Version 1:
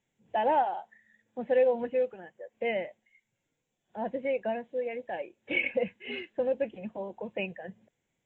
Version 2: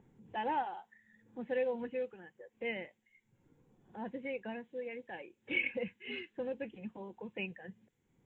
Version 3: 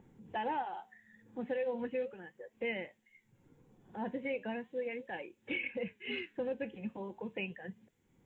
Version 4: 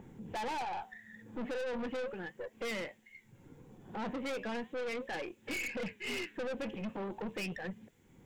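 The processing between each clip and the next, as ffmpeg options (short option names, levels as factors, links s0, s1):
-filter_complex "[0:a]equalizer=f=630:t=o:w=0.49:g=-14.5,acrossover=split=1100[s0][s1];[s0]acompressor=mode=upward:threshold=0.00708:ratio=2.5[s2];[s2][s1]amix=inputs=2:normalize=0,volume=0.631"
-af "alimiter=level_in=2.24:limit=0.0631:level=0:latency=1:release=252,volume=0.447,flanger=delay=3.5:depth=6.8:regen=-84:speed=0.37:shape=sinusoidal,volume=2.51"
-af "aeval=exprs='(tanh(178*val(0)+0.3)-tanh(0.3))/178':c=same,volume=2.99"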